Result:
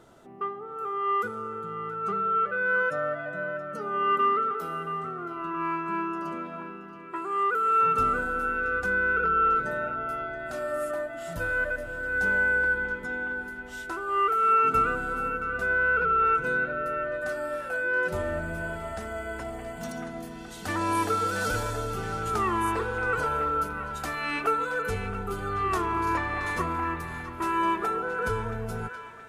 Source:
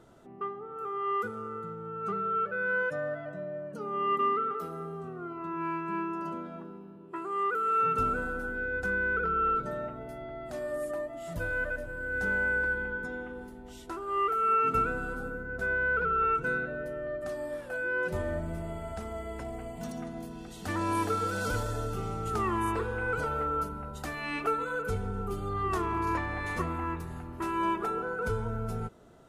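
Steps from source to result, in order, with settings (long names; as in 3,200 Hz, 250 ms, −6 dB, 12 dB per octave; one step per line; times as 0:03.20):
low-shelf EQ 440 Hz −5.5 dB
on a send: feedback echo with a band-pass in the loop 675 ms, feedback 58%, band-pass 2,100 Hz, level −9 dB
on the sum: level +5 dB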